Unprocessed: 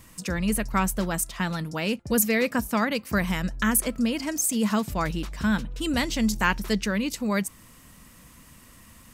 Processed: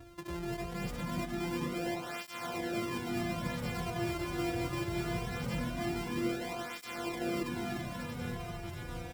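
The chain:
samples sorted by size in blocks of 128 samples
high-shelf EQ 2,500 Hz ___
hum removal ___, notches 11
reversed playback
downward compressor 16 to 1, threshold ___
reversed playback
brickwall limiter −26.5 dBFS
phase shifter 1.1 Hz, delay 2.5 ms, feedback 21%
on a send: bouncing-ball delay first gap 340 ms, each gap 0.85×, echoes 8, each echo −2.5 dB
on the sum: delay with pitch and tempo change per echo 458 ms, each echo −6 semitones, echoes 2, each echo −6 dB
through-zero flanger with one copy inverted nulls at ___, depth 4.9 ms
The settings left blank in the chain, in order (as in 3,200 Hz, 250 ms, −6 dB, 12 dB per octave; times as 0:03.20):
−5.5 dB, 143.1 Hz, −32 dBFS, 0.22 Hz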